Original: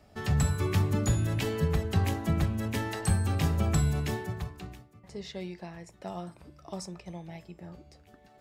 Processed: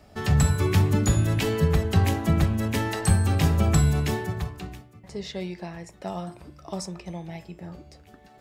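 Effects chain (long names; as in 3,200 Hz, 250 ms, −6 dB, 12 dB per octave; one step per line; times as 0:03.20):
hum removal 117.8 Hz, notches 30
level +6 dB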